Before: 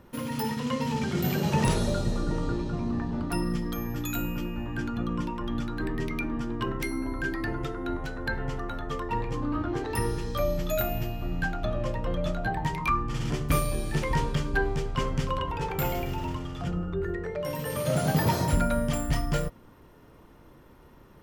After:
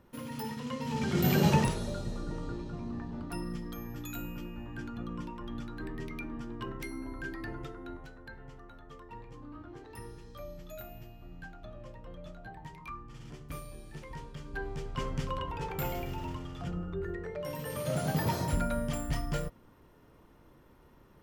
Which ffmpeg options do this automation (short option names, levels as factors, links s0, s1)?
-af "volume=5.31,afade=t=in:st=0.82:d=0.65:silence=0.281838,afade=t=out:st=1.47:d=0.24:silence=0.251189,afade=t=out:st=7.58:d=0.69:silence=0.375837,afade=t=in:st=14.34:d=0.77:silence=0.266073"